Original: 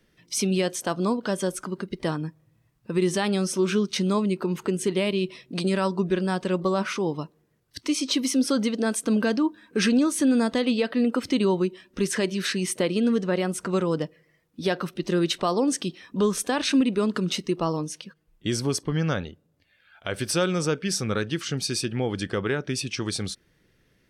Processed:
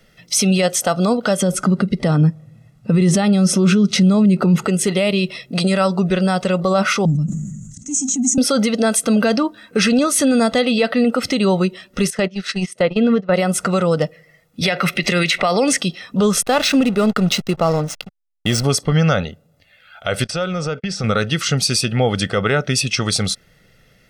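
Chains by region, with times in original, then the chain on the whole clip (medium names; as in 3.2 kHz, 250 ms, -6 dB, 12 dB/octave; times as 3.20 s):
1.41–4.65 s: low-pass 11 kHz + peaking EQ 200 Hz +11 dB 2.2 oct
7.05–8.38 s: FFT filter 110 Hz 0 dB, 200 Hz +11 dB, 290 Hz -2 dB, 430 Hz -30 dB, 1 kHz -29 dB, 1.5 kHz -24 dB, 4.8 kHz -29 dB, 6.9 kHz +11 dB, 12 kHz -29 dB + transient shaper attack -5 dB, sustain -1 dB + decay stretcher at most 40 dB/s
12.10–13.34 s: gate -26 dBFS, range -18 dB + low-pass that closes with the level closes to 2.8 kHz, closed at -21.5 dBFS
14.61–15.78 s: peaking EQ 2.2 kHz +14.5 dB 0.61 oct + three bands compressed up and down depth 100%
16.42–18.64 s: median filter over 3 samples + hysteresis with a dead band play -34 dBFS
20.24–21.04 s: gate -37 dBFS, range -43 dB + compression 12:1, threshold -28 dBFS + distance through air 110 m
whole clip: peaking EQ 65 Hz -7 dB 1.4 oct; comb 1.5 ms, depth 64%; loudness maximiser +17 dB; trim -6 dB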